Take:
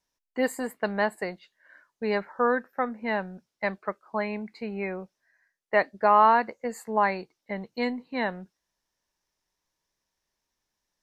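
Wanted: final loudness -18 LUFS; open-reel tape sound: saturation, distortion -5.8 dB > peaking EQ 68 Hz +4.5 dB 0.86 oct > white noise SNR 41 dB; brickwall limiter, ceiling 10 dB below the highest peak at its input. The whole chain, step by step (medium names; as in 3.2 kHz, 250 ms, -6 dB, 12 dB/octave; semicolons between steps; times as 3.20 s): peak limiter -18.5 dBFS; saturation -33.5 dBFS; peaking EQ 68 Hz +4.5 dB 0.86 oct; white noise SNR 41 dB; trim +21.5 dB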